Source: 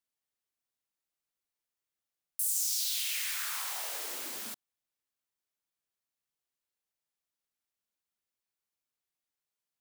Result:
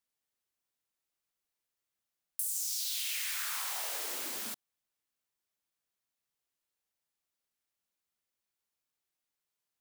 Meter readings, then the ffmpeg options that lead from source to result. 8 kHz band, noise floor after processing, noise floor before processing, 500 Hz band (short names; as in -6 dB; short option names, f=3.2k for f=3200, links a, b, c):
-2.5 dB, under -85 dBFS, under -85 dBFS, +1.0 dB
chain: -af "acompressor=threshold=-33dB:ratio=6,aeval=exprs='0.0944*(cos(1*acos(clip(val(0)/0.0944,-1,1)))-cos(1*PI/2))+0.00668*(cos(4*acos(clip(val(0)/0.0944,-1,1)))-cos(4*PI/2))+0.0075*(cos(6*acos(clip(val(0)/0.0944,-1,1)))-cos(6*PI/2))+0.00299*(cos(8*acos(clip(val(0)/0.0944,-1,1)))-cos(8*PI/2))':c=same,volume=1.5dB"